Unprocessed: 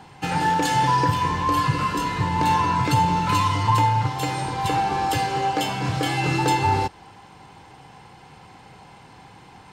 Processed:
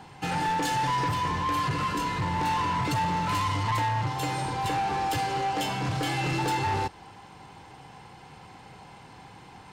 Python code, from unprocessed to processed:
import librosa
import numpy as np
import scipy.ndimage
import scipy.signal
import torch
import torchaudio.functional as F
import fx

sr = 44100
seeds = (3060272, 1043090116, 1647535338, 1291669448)

y = 10.0 ** (-22.0 / 20.0) * np.tanh(x / 10.0 ** (-22.0 / 20.0))
y = y * 10.0 ** (-1.5 / 20.0)